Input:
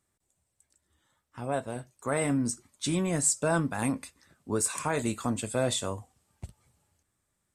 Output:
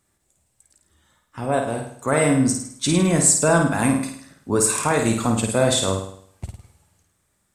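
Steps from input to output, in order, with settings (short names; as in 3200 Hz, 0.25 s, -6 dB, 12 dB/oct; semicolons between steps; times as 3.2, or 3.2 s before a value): flutter echo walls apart 9 m, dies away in 0.61 s; gain +8.5 dB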